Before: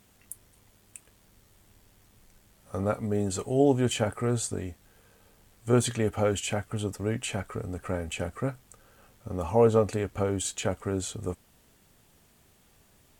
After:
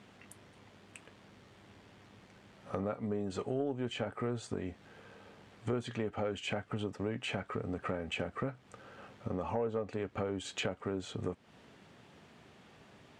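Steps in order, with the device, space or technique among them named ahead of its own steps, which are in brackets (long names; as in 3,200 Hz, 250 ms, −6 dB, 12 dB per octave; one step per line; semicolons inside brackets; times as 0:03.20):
AM radio (band-pass filter 130–3,300 Hz; downward compressor 5 to 1, threshold −40 dBFS, peak gain reduction 21 dB; soft clipping −28 dBFS, distortion −23 dB)
level +7 dB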